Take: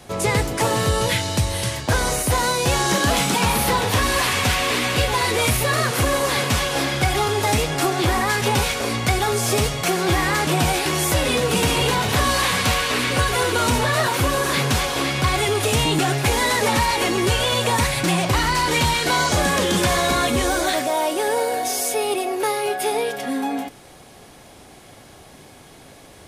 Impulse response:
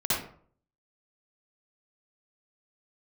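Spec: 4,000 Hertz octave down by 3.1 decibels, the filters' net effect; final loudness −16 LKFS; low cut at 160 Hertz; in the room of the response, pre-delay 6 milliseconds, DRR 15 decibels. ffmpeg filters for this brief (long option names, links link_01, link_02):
-filter_complex "[0:a]highpass=160,equalizer=frequency=4000:width_type=o:gain=-4,asplit=2[link_01][link_02];[1:a]atrim=start_sample=2205,adelay=6[link_03];[link_02][link_03]afir=irnorm=-1:irlink=0,volume=-25dB[link_04];[link_01][link_04]amix=inputs=2:normalize=0,volume=5dB"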